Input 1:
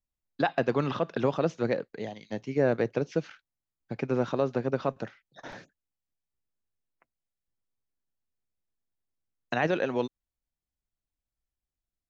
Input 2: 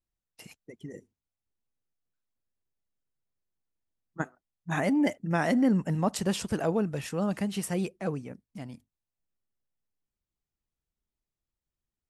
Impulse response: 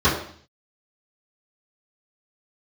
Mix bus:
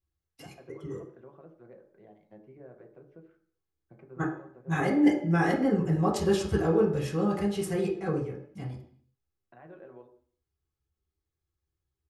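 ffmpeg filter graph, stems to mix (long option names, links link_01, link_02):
-filter_complex "[0:a]lowpass=1400,lowshelf=frequency=120:gain=-10.5,alimiter=level_in=1.5dB:limit=-24dB:level=0:latency=1:release=444,volume=-1.5dB,volume=-16dB,asplit=2[link_01][link_02];[link_02]volume=-23.5dB[link_03];[1:a]aecho=1:1:2.4:0.52,volume=-5.5dB,asplit=2[link_04][link_05];[link_05]volume=-15dB[link_06];[2:a]atrim=start_sample=2205[link_07];[link_03][link_06]amix=inputs=2:normalize=0[link_08];[link_08][link_07]afir=irnorm=-1:irlink=0[link_09];[link_01][link_04][link_09]amix=inputs=3:normalize=0"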